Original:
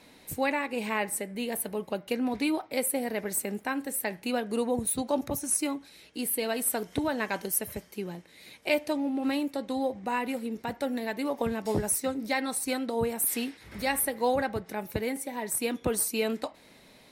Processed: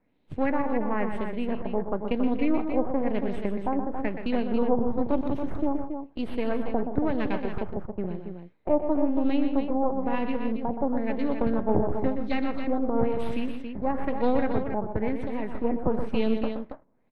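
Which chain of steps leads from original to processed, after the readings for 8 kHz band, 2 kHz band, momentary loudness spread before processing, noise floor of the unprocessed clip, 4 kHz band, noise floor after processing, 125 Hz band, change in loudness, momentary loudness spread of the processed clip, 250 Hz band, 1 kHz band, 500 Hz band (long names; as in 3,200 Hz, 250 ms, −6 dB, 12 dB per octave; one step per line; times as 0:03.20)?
below −35 dB, −5.0 dB, 8 LU, −56 dBFS, −8.0 dB, −54 dBFS, +6.0 dB, +2.0 dB, 8 LU, +5.5 dB, +2.0 dB, +3.0 dB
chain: gain on one half-wave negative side −12 dB
auto-filter low-pass sine 1 Hz 840–3,500 Hz
tilt shelving filter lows +9.5 dB
noise gate −38 dBFS, range −17 dB
on a send: multi-tap delay 123/164/277 ms −8.5/−17/−7.5 dB
on the sum: level −1.5 dB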